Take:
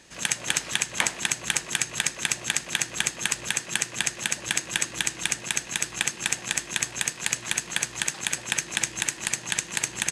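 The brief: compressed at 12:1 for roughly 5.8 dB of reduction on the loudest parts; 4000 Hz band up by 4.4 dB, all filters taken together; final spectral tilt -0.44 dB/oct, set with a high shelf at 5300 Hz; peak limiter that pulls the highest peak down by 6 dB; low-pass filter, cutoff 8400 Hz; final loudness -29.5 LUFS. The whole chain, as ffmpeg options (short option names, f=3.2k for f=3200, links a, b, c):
-af "lowpass=8.4k,equalizer=f=4k:t=o:g=8,highshelf=f=5.3k:g=-5.5,acompressor=threshold=-25dB:ratio=12,volume=3dB,alimiter=limit=-9dB:level=0:latency=1"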